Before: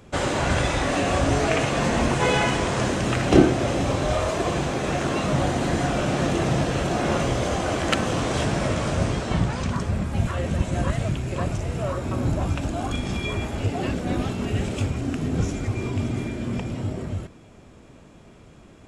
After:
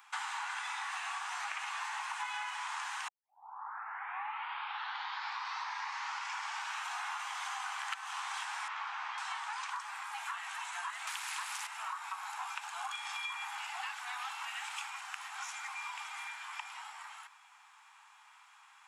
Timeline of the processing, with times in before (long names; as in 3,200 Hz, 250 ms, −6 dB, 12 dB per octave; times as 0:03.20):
0:03.08: tape start 3.88 s
0:08.68–0:09.18: high-frequency loss of the air 200 metres
0:11.07–0:11.67: every bin compressed towards the loudest bin 2 to 1
whole clip: Butterworth high-pass 820 Hz 96 dB per octave; parametric band 5,800 Hz −6 dB 2.3 octaves; downward compressor 10 to 1, threshold −37 dBFS; level +1 dB